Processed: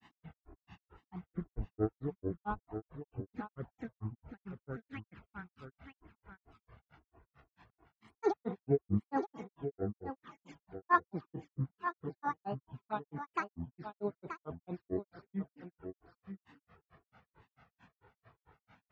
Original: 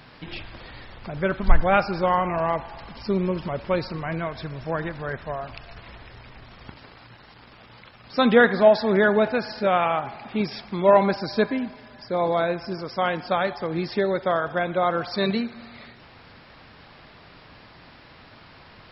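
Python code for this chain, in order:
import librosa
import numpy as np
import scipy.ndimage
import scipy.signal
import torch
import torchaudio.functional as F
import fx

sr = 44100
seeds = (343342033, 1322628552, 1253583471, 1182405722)

p1 = scipy.signal.sosfilt(scipy.signal.butter(2, 60.0, 'highpass', fs=sr, output='sos'), x)
p2 = fx.env_flanger(p1, sr, rest_ms=2.0, full_db=-20.0)
p3 = scipy.signal.sosfilt(scipy.signal.butter(2, 1400.0, 'lowpass', fs=sr, output='sos'), p2)
p4 = fx.granulator(p3, sr, seeds[0], grain_ms=118.0, per_s=4.5, spray_ms=100.0, spread_st=12)
p5 = fx.peak_eq(p4, sr, hz=570.0, db=-14.0, octaves=0.2)
p6 = p5 + fx.echo_single(p5, sr, ms=929, db=-9.0, dry=0)
y = p6 * 10.0 ** (-6.0 / 20.0)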